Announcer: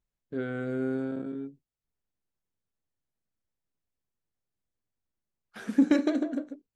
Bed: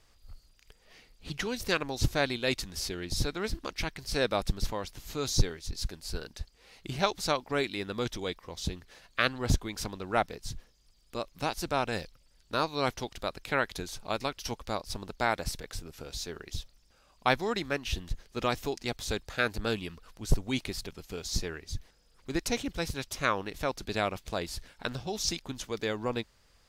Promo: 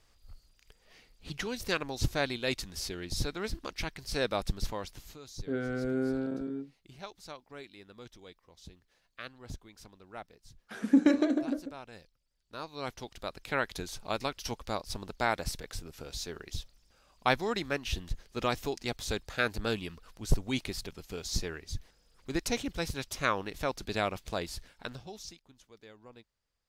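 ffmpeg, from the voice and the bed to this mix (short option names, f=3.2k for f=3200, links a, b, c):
-filter_complex "[0:a]adelay=5150,volume=-0.5dB[a];[1:a]volume=13.5dB,afade=t=out:st=4.99:d=0.2:silence=0.188365,afade=t=in:st=12.41:d=1.41:silence=0.158489,afade=t=out:st=24.38:d=1:silence=0.1[b];[a][b]amix=inputs=2:normalize=0"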